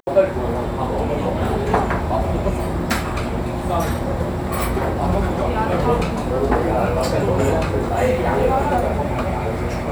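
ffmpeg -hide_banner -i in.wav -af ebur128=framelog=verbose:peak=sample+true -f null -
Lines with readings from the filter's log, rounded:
Integrated loudness:
  I:         -20.5 LUFS
  Threshold: -30.5 LUFS
Loudness range:
  LRA:         2.8 LU
  Threshold: -40.4 LUFS
  LRA low:   -21.9 LUFS
  LRA high:  -19.0 LUFS
Sample peak:
  Peak:       -2.7 dBFS
True peak:
  Peak:       -2.7 dBFS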